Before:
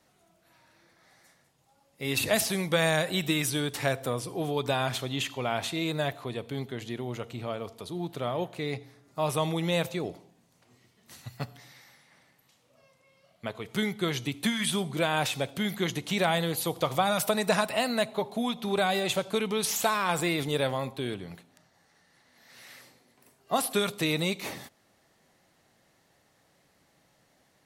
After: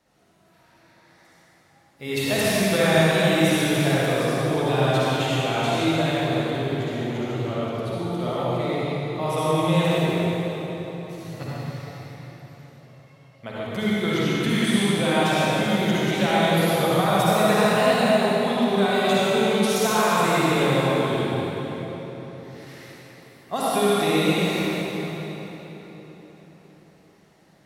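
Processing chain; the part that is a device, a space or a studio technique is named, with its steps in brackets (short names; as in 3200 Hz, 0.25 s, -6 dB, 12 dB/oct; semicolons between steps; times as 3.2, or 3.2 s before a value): swimming-pool hall (reverb RT60 4.3 s, pre-delay 49 ms, DRR -9 dB; high shelf 5300 Hz -5.5 dB); gain -1.5 dB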